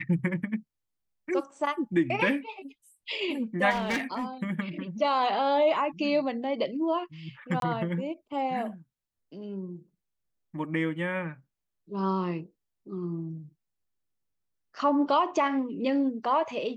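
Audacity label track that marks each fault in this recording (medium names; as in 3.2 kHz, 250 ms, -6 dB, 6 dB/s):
3.700000	4.240000	clipped -25 dBFS
7.600000	7.620000	dropout 22 ms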